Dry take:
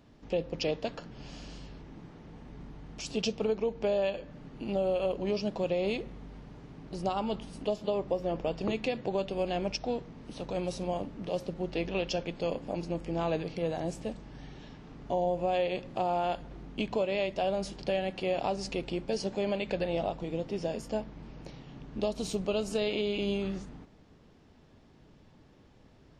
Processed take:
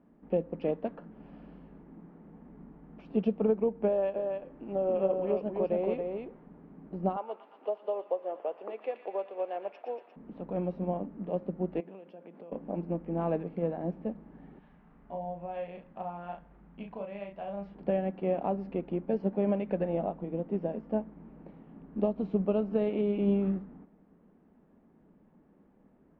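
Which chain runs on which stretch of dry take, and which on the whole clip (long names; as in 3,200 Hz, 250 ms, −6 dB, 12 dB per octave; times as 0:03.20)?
0:03.88–0:06.47: parametric band 190 Hz −10 dB 0.71 octaves + single-tap delay 277 ms −3 dB
0:07.16–0:10.16: high-pass filter 450 Hz 24 dB per octave + delay with a high-pass on its return 117 ms, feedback 72%, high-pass 1,500 Hz, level −5.5 dB
0:11.80–0:12.52: high-pass filter 250 Hz + downward compressor 8 to 1, threshold −40 dBFS
0:14.59–0:17.75: parametric band 320 Hz −14 dB 2 octaves + double-tracking delay 35 ms −4 dB
whole clip: Bessel low-pass filter 1,300 Hz, order 4; low shelf with overshoot 150 Hz −7 dB, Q 3; expander for the loud parts 1.5 to 1, over −37 dBFS; level +2.5 dB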